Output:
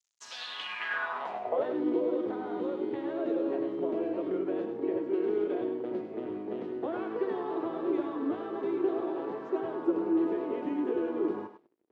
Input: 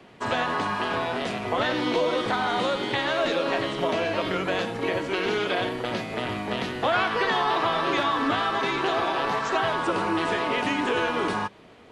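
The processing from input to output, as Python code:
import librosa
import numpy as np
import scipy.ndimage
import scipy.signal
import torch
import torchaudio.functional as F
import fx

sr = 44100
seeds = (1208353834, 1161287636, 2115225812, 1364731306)

y = fx.echo_thinned(x, sr, ms=101, feedback_pct=27, hz=420.0, wet_db=-7.5)
y = np.sign(y) * np.maximum(np.abs(y) - 10.0 ** (-44.5 / 20.0), 0.0)
y = fx.filter_sweep_bandpass(y, sr, from_hz=6800.0, to_hz=350.0, start_s=0.19, end_s=1.8, q=4.2)
y = F.gain(torch.from_numpy(y), 3.5).numpy()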